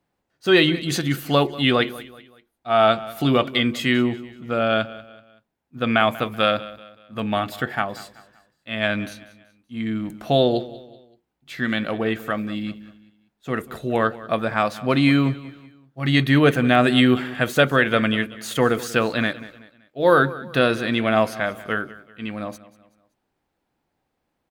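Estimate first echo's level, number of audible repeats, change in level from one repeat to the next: -18.0 dB, 3, -8.0 dB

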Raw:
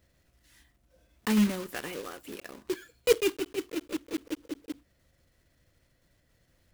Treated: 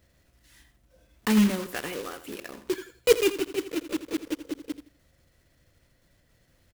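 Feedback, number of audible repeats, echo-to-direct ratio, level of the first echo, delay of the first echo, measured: 24%, 2, -12.5 dB, -13.0 dB, 83 ms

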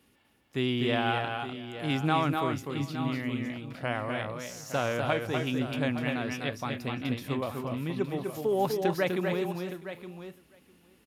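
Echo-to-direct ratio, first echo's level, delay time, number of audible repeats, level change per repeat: -3.0 dB, -4.5 dB, 0.249 s, 5, no steady repeat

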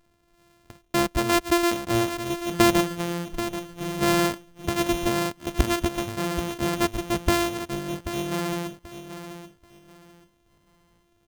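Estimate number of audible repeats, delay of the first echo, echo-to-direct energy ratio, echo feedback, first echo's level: 2, 0.784 s, -10.5 dB, 25%, -11.0 dB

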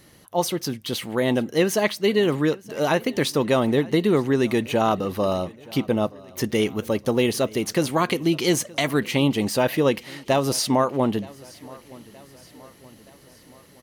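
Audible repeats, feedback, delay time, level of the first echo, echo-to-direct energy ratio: 3, 54%, 0.922 s, -22.5 dB, -21.0 dB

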